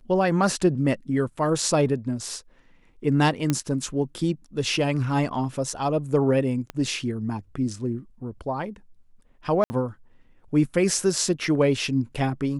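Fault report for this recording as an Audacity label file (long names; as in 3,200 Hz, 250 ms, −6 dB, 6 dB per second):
3.500000	3.500000	click −9 dBFS
6.700000	6.700000	click −18 dBFS
9.640000	9.700000	drop-out 60 ms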